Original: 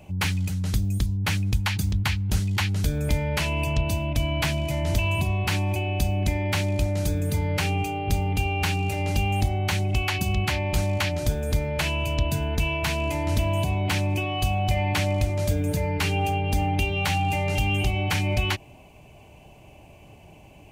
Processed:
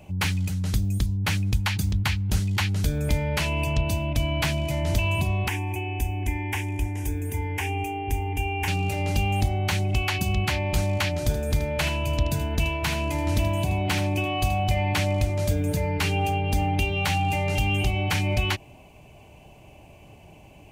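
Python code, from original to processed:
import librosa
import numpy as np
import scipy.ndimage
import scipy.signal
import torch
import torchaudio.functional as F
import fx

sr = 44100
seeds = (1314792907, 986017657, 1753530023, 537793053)

y = fx.fixed_phaser(x, sr, hz=860.0, stages=8, at=(5.48, 8.68))
y = fx.echo_single(y, sr, ms=78, db=-10.5, at=(11.22, 14.64))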